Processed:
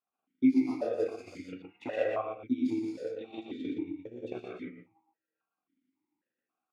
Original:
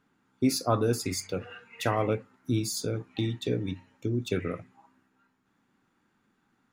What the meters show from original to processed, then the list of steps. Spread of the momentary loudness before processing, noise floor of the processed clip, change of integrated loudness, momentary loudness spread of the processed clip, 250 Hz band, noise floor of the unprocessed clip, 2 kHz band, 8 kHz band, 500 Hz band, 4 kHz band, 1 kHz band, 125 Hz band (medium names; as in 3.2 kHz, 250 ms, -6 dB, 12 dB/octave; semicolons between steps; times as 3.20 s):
10 LU, under -85 dBFS, -2.5 dB, 17 LU, +0.5 dB, -73 dBFS, -6.0 dB, under -25 dB, -3.0 dB, -16.5 dB, -8.0 dB, -20.5 dB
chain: tracing distortion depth 0.03 ms; gate -59 dBFS, range -8 dB; chorus voices 2, 0.47 Hz, delay 19 ms, depth 3.2 ms; gated-style reverb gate 210 ms rising, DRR -4.5 dB; transient shaper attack +9 dB, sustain -8 dB; delay 119 ms -5 dB; stepped vowel filter 3.7 Hz